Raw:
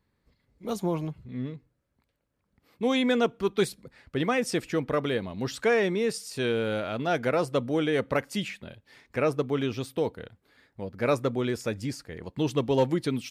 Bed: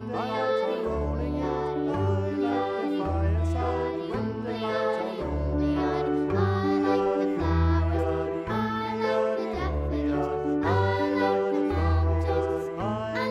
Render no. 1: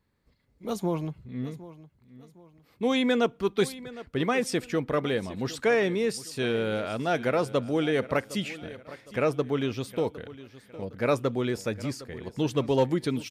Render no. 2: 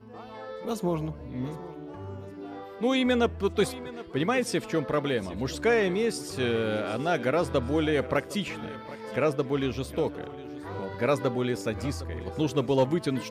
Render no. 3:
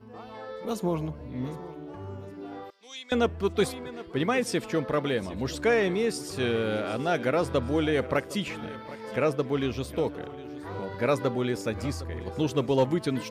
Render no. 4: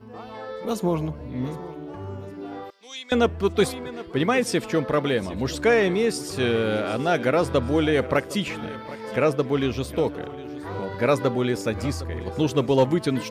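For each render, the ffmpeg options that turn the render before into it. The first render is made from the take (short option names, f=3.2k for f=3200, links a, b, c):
-af "aecho=1:1:760|1520|2280:0.141|0.0523|0.0193"
-filter_complex "[1:a]volume=-14dB[a];[0:a][a]amix=inputs=2:normalize=0"
-filter_complex "[0:a]asettb=1/sr,asplit=3[a][b][c];[a]atrim=end=2.704[d];[b]atrim=start=2.7:end=3.12,asetpts=PTS-STARTPTS,afade=t=in:d=0.004:c=qsin,afade=t=out:st=0.416:d=0.004:c=qsin,bandpass=f=5.6k:t=q:w=2.1[e];[c]atrim=start=3.116[f];[d][e]acrossfade=d=0.004:c1=hsin:c2=qsin[g];[g][f]acrossfade=d=0.004:c1=qsin:c2=hsin"
-af "volume=4.5dB"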